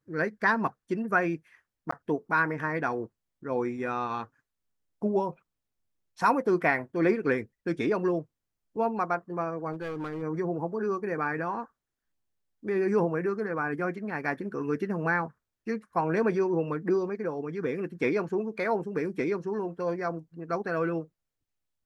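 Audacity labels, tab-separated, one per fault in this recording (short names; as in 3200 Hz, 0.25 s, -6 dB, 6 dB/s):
1.910000	1.920000	gap 14 ms
9.720000	10.230000	clipped -30.5 dBFS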